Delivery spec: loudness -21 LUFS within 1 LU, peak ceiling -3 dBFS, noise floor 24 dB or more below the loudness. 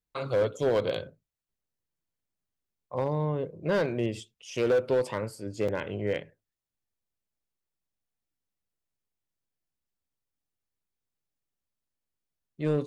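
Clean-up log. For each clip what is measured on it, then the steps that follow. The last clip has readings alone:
clipped 0.8%; flat tops at -19.5 dBFS; dropouts 1; longest dropout 5.3 ms; loudness -29.5 LUFS; peak -19.5 dBFS; loudness target -21.0 LUFS
-> clip repair -19.5 dBFS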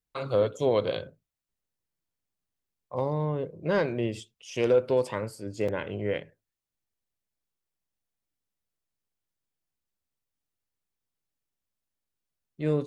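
clipped 0.0%; dropouts 1; longest dropout 5.3 ms
-> interpolate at 5.68, 5.3 ms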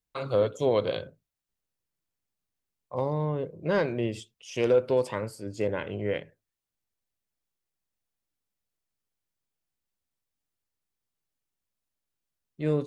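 dropouts 0; loudness -29.0 LUFS; peak -12.5 dBFS; loudness target -21.0 LUFS
-> gain +8 dB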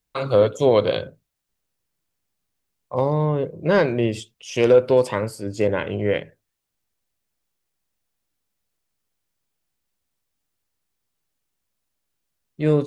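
loudness -21.0 LUFS; peak -4.5 dBFS; noise floor -79 dBFS

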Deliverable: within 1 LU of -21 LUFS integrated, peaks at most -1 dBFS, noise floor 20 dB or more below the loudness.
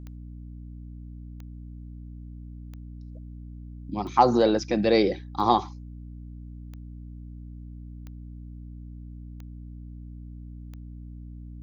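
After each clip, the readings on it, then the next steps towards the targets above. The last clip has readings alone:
clicks 9; hum 60 Hz; harmonics up to 300 Hz; hum level -38 dBFS; loudness -23.5 LUFS; peak -6.0 dBFS; loudness target -21.0 LUFS
-> de-click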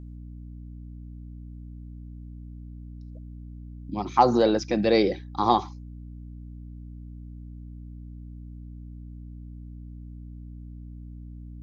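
clicks 0; hum 60 Hz; harmonics up to 300 Hz; hum level -38 dBFS
-> notches 60/120/180/240/300 Hz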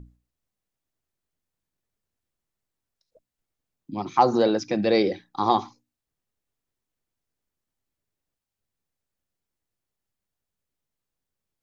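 hum none; loudness -23.0 LUFS; peak -6.0 dBFS; loudness target -21.0 LUFS
-> gain +2 dB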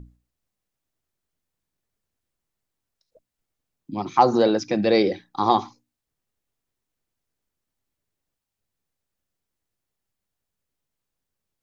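loudness -21.0 LUFS; peak -4.0 dBFS; noise floor -84 dBFS

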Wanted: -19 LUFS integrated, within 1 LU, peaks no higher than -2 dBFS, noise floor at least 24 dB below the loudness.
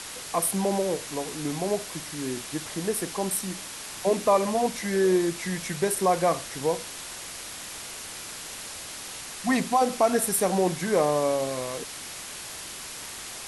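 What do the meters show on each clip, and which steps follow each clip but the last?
noise floor -39 dBFS; noise floor target -52 dBFS; loudness -27.5 LUFS; peak -10.5 dBFS; loudness target -19.0 LUFS
-> denoiser 13 dB, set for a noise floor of -39 dBFS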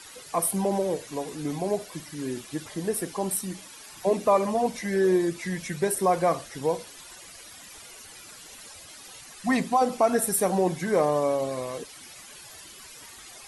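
noise floor -46 dBFS; noise floor target -51 dBFS
-> denoiser 6 dB, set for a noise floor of -46 dBFS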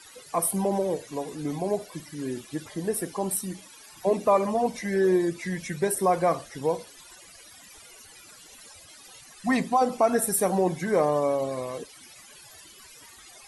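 noise floor -50 dBFS; noise floor target -51 dBFS
-> denoiser 6 dB, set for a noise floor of -50 dBFS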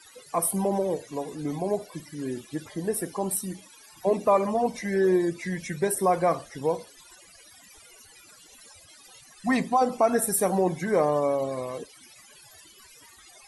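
noise floor -53 dBFS; loudness -26.5 LUFS; peak -10.5 dBFS; loudness target -19.0 LUFS
-> gain +7.5 dB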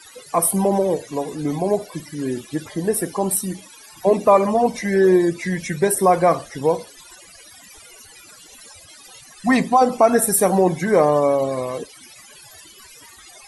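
loudness -19.0 LUFS; peak -3.0 dBFS; noise floor -45 dBFS

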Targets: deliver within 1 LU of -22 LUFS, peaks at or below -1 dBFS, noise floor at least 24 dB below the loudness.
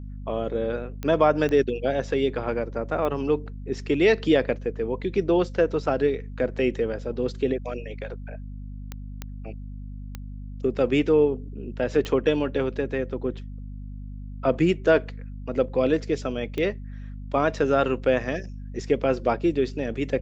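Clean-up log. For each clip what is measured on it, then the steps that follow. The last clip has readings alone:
clicks 8; hum 50 Hz; harmonics up to 250 Hz; hum level -34 dBFS; loudness -25.0 LUFS; peak -6.5 dBFS; loudness target -22.0 LUFS
-> de-click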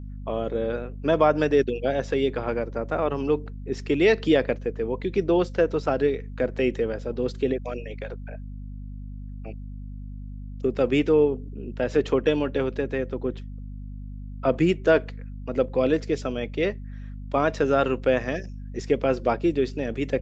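clicks 0; hum 50 Hz; harmonics up to 250 Hz; hum level -34 dBFS
-> de-hum 50 Hz, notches 5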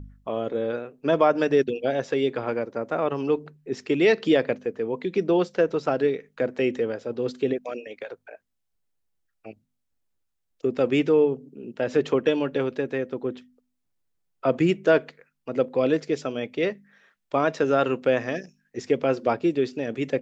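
hum none; loudness -25.0 LUFS; peak -7.0 dBFS; loudness target -22.0 LUFS
-> gain +3 dB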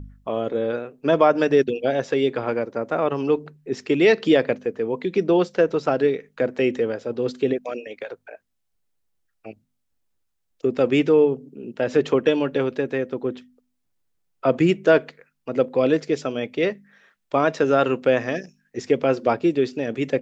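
loudness -22.0 LUFS; peak -4.0 dBFS; noise floor -74 dBFS

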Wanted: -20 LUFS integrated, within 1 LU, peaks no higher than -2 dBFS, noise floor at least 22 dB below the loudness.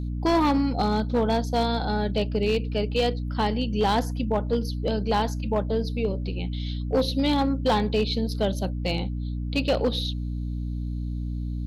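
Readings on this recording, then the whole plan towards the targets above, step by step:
clipped 0.9%; flat tops at -16.0 dBFS; hum 60 Hz; harmonics up to 300 Hz; hum level -27 dBFS; loudness -26.0 LUFS; peak -16.0 dBFS; loudness target -20.0 LUFS
-> clip repair -16 dBFS; notches 60/120/180/240/300 Hz; gain +6 dB

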